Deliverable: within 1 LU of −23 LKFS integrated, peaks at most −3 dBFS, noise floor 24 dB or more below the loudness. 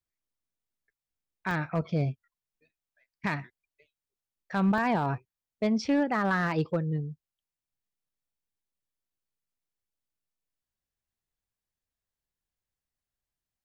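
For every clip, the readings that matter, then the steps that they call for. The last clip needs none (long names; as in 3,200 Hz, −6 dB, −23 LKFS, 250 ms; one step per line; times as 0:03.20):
share of clipped samples 0.2%; peaks flattened at −19.0 dBFS; number of dropouts 2; longest dropout 1.2 ms; integrated loudness −29.5 LKFS; sample peak −19.0 dBFS; target loudness −23.0 LKFS
→ clipped peaks rebuilt −19 dBFS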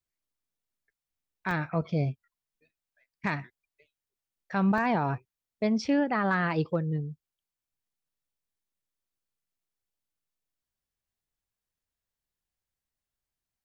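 share of clipped samples 0.0%; number of dropouts 2; longest dropout 1.2 ms
→ repair the gap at 0:01.51/0:04.78, 1.2 ms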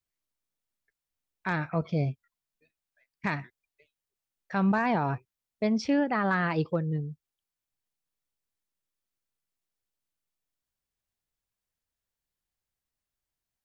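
number of dropouts 0; integrated loudness −29.0 LKFS; sample peak −15.5 dBFS; target loudness −23.0 LKFS
→ level +6 dB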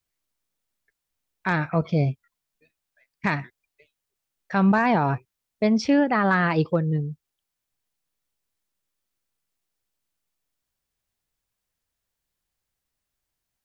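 integrated loudness −23.0 LKFS; sample peak −9.5 dBFS; background noise floor −83 dBFS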